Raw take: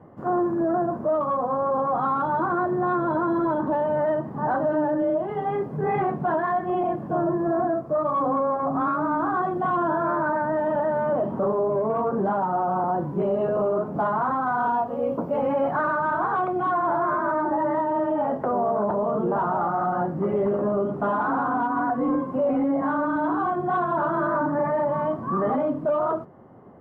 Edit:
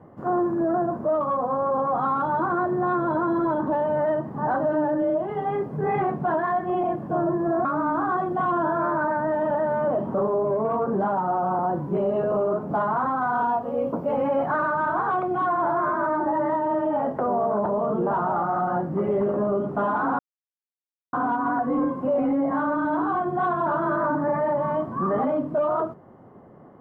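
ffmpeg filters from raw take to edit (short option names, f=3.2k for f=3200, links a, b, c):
-filter_complex "[0:a]asplit=3[a][b][c];[a]atrim=end=7.652[d];[b]atrim=start=8.898:end=21.44,asetpts=PTS-STARTPTS,afade=t=out:st=12.538:d=0.004:c=hsin,apad=pad_dur=0.94[e];[c]atrim=start=21.44,asetpts=PTS-STARTPTS,afade=t=in:d=0.004:c=hsin[f];[e][f]concat=n=2:v=0:a=1[g];[d][g]acrossfade=d=0.004:c1=hsin:c2=hsin"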